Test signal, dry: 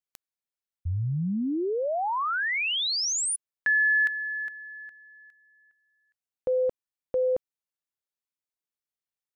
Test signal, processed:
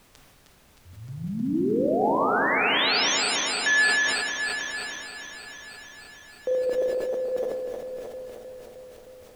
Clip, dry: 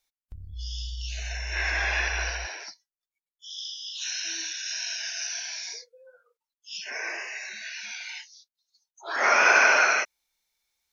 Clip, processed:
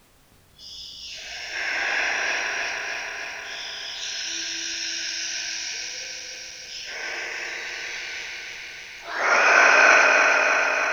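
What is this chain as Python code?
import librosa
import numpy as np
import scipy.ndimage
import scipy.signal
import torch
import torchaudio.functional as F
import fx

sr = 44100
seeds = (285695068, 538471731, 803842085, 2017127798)

y = fx.reverse_delay_fb(x, sr, ms=155, feedback_pct=85, wet_db=-4.0)
y = scipy.signal.sosfilt(scipy.signal.cheby1(2, 1.0, [270.0, 5600.0], 'bandpass', fs=sr, output='sos'), y)
y = fx.rev_spring(y, sr, rt60_s=2.3, pass_ms=(36, 54, 58), chirp_ms=60, drr_db=2.0)
y = fx.dmg_noise_colour(y, sr, seeds[0], colour='pink', level_db=-57.0)
y = fx.sustainer(y, sr, db_per_s=26.0)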